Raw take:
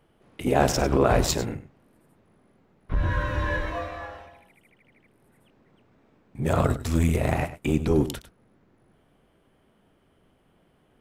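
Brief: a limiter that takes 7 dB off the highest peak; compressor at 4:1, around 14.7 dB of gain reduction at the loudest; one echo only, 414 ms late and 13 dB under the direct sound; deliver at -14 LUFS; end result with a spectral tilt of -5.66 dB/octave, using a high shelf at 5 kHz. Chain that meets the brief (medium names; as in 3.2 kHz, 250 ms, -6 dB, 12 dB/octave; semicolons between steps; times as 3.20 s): treble shelf 5 kHz -4 dB; compression 4:1, threshold -34 dBFS; peak limiter -28 dBFS; delay 414 ms -13 dB; trim +26 dB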